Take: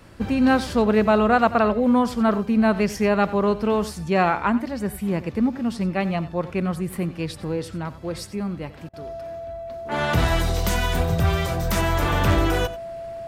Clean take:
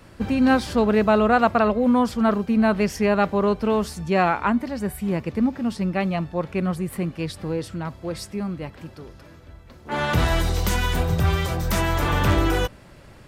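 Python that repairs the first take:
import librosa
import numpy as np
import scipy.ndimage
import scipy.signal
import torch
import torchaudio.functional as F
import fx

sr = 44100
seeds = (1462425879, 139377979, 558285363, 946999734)

y = fx.notch(x, sr, hz=670.0, q=30.0)
y = fx.fix_interpolate(y, sr, at_s=(8.89,), length_ms=43.0)
y = fx.fix_echo_inverse(y, sr, delay_ms=90, level_db=-16.0)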